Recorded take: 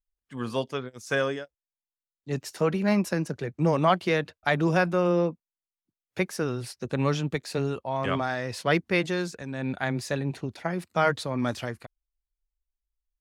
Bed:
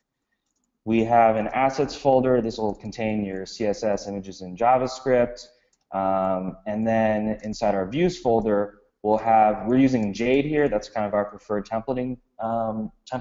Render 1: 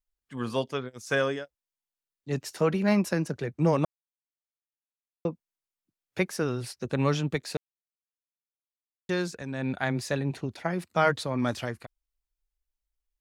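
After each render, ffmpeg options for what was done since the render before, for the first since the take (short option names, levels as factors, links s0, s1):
-filter_complex "[0:a]asplit=5[s0][s1][s2][s3][s4];[s0]atrim=end=3.85,asetpts=PTS-STARTPTS,afade=t=out:st=3.846:d=0.004:c=hsin[s5];[s1]atrim=start=3.85:end=5.25,asetpts=PTS-STARTPTS,volume=0[s6];[s2]atrim=start=5.25:end=7.57,asetpts=PTS-STARTPTS,afade=t=in:d=0.004:c=hsin,afade=t=out:st=2.316:d=0.004:c=hsin[s7];[s3]atrim=start=7.57:end=9.09,asetpts=PTS-STARTPTS,volume=0[s8];[s4]atrim=start=9.09,asetpts=PTS-STARTPTS,afade=t=in:d=0.004:c=hsin[s9];[s5][s6][s7][s8][s9]concat=n=5:v=0:a=1"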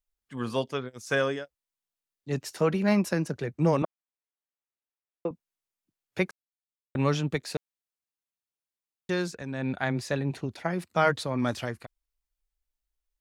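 -filter_complex "[0:a]asettb=1/sr,asplit=3[s0][s1][s2];[s0]atrim=end=3.824[s3];[s1]atrim=start=3.82:end=5.31,asetpts=PTS-STARTPTS,afade=t=in:d=0.004:c=qsin,afade=t=out:st=1.486:d=0.004:c=qsin,highpass=260,lowpass=2600[s4];[s2]atrim=start=5.306[s5];[s3][s4]acrossfade=d=0.004:c1=hsin:c2=qsin[s6];[s6][s5]acrossfade=d=0.004:c1=qsin:c2=hsin,asettb=1/sr,asplit=3[s7][s8][s9];[s7]atrim=end=9.324[s10];[s8]atrim=start=9.32:end=10.3,asetpts=PTS-STARTPTS,afade=t=in:d=0.004:c=qsin,afade=t=out:st=0.976:d=0.004:c=qsin,highshelf=f=7200:g=-5.5[s11];[s9]atrim=start=10.296[s12];[s10][s11]acrossfade=d=0.004:c1=hsin:c2=qsin[s13];[s13][s12]acrossfade=d=0.004:c1=qsin:c2=hsin,asplit=3[s14][s15][s16];[s14]atrim=end=6.31,asetpts=PTS-STARTPTS,afade=t=out:st=6.306:d=0.004:c=hsin[s17];[s15]atrim=start=6.31:end=6.95,asetpts=PTS-STARTPTS,volume=0[s18];[s16]atrim=start=6.95,asetpts=PTS-STARTPTS,afade=t=in:d=0.004:c=hsin[s19];[s17][s18][s19]concat=n=3:v=0:a=1"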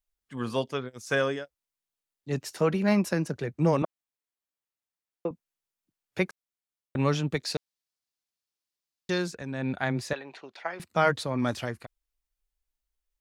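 -filter_complex "[0:a]asettb=1/sr,asplit=3[s0][s1][s2];[s0]atrim=end=7.374[s3];[s1]atrim=start=7.37:end=9.18,asetpts=PTS-STARTPTS,afade=t=in:d=0.004:c=qsin,afade=t=out:st=1.806:d=0.004:c=qsin,equalizer=f=4800:t=o:w=0.98:g=7.5[s4];[s2]atrim=start=9.176[s5];[s3][s4]acrossfade=d=0.004:c1=hsin:c2=qsin[s6];[s6][s5]acrossfade=d=0.004:c1=qsin:c2=hsin,asettb=1/sr,asplit=3[s7][s8][s9];[s7]atrim=end=10.134[s10];[s8]atrim=start=10.13:end=10.8,asetpts=PTS-STARTPTS,afade=t=in:d=0.004:c=qsin,afade=t=out:st=0.666:d=0.004:c=qsin,highpass=660,lowpass=4500[s11];[s9]atrim=start=10.796[s12];[s10][s11]acrossfade=d=0.004:c1=hsin:c2=qsin[s13];[s13][s12]acrossfade=d=0.004:c1=qsin:c2=hsin"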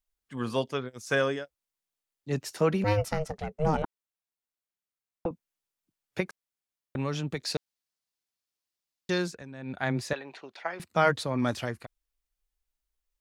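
-filter_complex "[0:a]asettb=1/sr,asplit=3[s0][s1][s2];[s0]atrim=end=2.844[s3];[s1]atrim=start=2.84:end=5.26,asetpts=PTS-STARTPTS,afade=t=in:d=0.004:c=qsin,afade=t=out:st=2.416:d=0.004:c=qsin,aeval=exprs='val(0)*sin(2*PI*310*n/s)':c=same[s4];[s2]atrim=start=5.256[s5];[s3][s4]acrossfade=d=0.004:c1=hsin:c2=qsin[s6];[s6][s5]acrossfade=d=0.004:c1=qsin:c2=hsin,asettb=1/sr,asplit=3[s7][s8][s9];[s7]atrim=end=6.204[s10];[s8]atrim=start=6.2:end=7.47,asetpts=PTS-STARTPTS,afade=t=in:d=0.004:c=qsin,afade=t=out:st=1.266:d=0.004:c=qsin,acompressor=threshold=0.0316:ratio=2:attack=3.2:release=140:knee=1:detection=peak[s11];[s9]atrim=start=7.466[s12];[s10][s11]acrossfade=d=0.004:c1=hsin:c2=qsin[s13];[s13][s12]acrossfade=d=0.004:c1=qsin:c2=hsin,asplit=3[s14][s15][s16];[s14]atrim=end=9.49,asetpts=PTS-STARTPTS,afade=t=out:st=9.25:d=0.24:silence=0.334965[s17];[s15]atrim=start=9.49:end=9.65,asetpts=PTS-STARTPTS,volume=0.335[s18];[s16]atrim=start=9.65,asetpts=PTS-STARTPTS,afade=t=in:d=0.24:silence=0.334965[s19];[s17][s18][s19]concat=n=3:v=0:a=1"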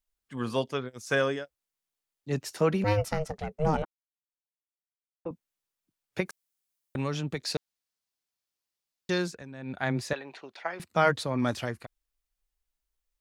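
-filter_complex "[0:a]asettb=1/sr,asplit=3[s0][s1][s2];[s0]atrim=end=3.844[s3];[s1]atrim=start=3.84:end=5.29,asetpts=PTS-STARTPTS,afade=t=in:d=0.004:c=qsin,afade=t=out:st=1.446:d=0.004:c=qsin,agate=range=0.0224:threshold=0.0562:ratio=3:release=100:detection=peak[s4];[s2]atrim=start=5.286[s5];[s3][s4]acrossfade=d=0.004:c1=hsin:c2=qsin[s6];[s6][s5]acrossfade=d=0.004:c1=qsin:c2=hsin,asettb=1/sr,asplit=3[s7][s8][s9];[s7]atrim=end=6.254[s10];[s8]atrim=start=6.25:end=7.08,asetpts=PTS-STARTPTS,afade=t=in:d=0.004:c=qsin,afade=t=out:st=0.826:d=0.004:c=qsin,highshelf=f=4800:g=10[s11];[s9]atrim=start=7.076[s12];[s10][s11]acrossfade=d=0.004:c1=hsin:c2=qsin[s13];[s13][s12]acrossfade=d=0.004:c1=qsin:c2=hsin"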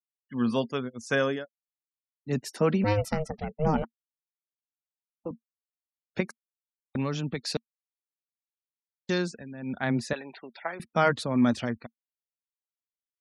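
-af "afftfilt=real='re*gte(hypot(re,im),0.00447)':imag='im*gte(hypot(re,im),0.00447)':win_size=1024:overlap=0.75,equalizer=f=230:t=o:w=0.33:g=10.5"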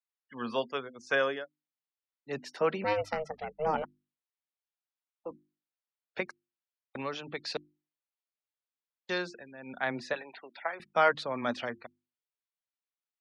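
-filter_complex "[0:a]acrossover=split=410 5000:gain=0.158 1 0.0794[s0][s1][s2];[s0][s1][s2]amix=inputs=3:normalize=0,bandreject=f=50:t=h:w=6,bandreject=f=100:t=h:w=6,bandreject=f=150:t=h:w=6,bandreject=f=200:t=h:w=6,bandreject=f=250:t=h:w=6,bandreject=f=300:t=h:w=6,bandreject=f=350:t=h:w=6"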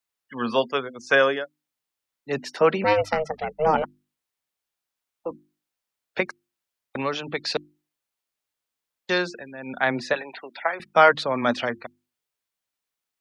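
-af "volume=2.99,alimiter=limit=0.708:level=0:latency=1"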